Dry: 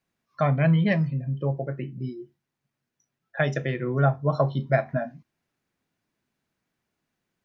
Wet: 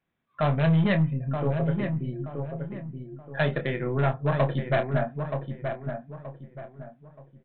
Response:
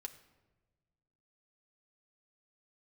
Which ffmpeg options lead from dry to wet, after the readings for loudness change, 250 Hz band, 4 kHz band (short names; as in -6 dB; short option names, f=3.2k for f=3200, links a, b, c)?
-2.0 dB, 0.0 dB, +2.5 dB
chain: -filter_complex "[0:a]bandreject=f=2.8k:w=19,aeval=exprs='0.473*(cos(1*acos(clip(val(0)/0.473,-1,1)))-cos(1*PI/2))+0.0841*(cos(4*acos(clip(val(0)/0.473,-1,1)))-cos(4*PI/2))+0.0075*(cos(6*acos(clip(val(0)/0.473,-1,1)))-cos(6*PI/2))':c=same,aresample=8000,volume=17.5dB,asoftclip=hard,volume=-17.5dB,aresample=44100,asplit=2[a][b];[b]adelay=26,volume=-9dB[c];[a][c]amix=inputs=2:normalize=0,asplit=2[d][e];[e]adelay=926,lowpass=f=1.7k:p=1,volume=-6dB,asplit=2[f][g];[g]adelay=926,lowpass=f=1.7k:p=1,volume=0.35,asplit=2[h][i];[i]adelay=926,lowpass=f=1.7k:p=1,volume=0.35,asplit=2[j][k];[k]adelay=926,lowpass=f=1.7k:p=1,volume=0.35[l];[d][f][h][j][l]amix=inputs=5:normalize=0"